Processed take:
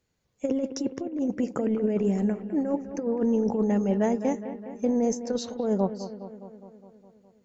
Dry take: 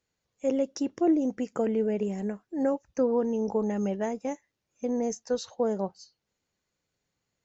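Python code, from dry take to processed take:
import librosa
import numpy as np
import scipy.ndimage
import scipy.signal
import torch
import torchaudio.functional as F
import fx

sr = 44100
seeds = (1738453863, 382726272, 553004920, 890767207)

y = fx.low_shelf(x, sr, hz=410.0, db=7.0)
y = fx.over_compress(y, sr, threshold_db=-24.0, ratio=-0.5)
y = fx.echo_bbd(y, sr, ms=206, stages=4096, feedback_pct=65, wet_db=-12)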